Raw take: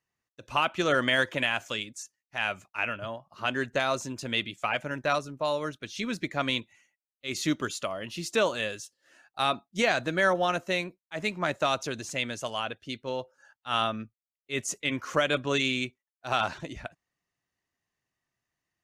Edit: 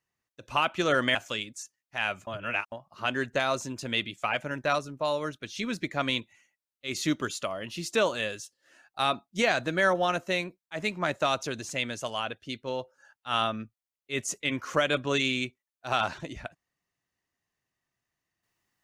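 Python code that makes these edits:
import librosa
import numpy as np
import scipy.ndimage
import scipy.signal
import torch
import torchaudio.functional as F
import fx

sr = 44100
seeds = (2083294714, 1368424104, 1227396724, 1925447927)

y = fx.edit(x, sr, fx.cut(start_s=1.15, length_s=0.4),
    fx.reverse_span(start_s=2.67, length_s=0.45), tone=tone)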